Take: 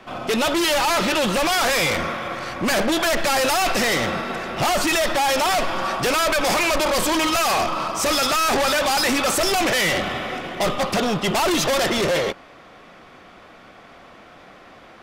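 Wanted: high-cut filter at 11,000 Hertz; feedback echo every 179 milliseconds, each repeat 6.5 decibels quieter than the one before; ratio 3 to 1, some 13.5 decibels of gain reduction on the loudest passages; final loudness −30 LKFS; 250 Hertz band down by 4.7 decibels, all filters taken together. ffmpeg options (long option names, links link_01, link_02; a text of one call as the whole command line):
ffmpeg -i in.wav -af "lowpass=11000,equalizer=frequency=250:width_type=o:gain=-6.5,acompressor=threshold=-38dB:ratio=3,aecho=1:1:179|358|537|716|895|1074:0.473|0.222|0.105|0.0491|0.0231|0.0109,volume=2.5dB" out.wav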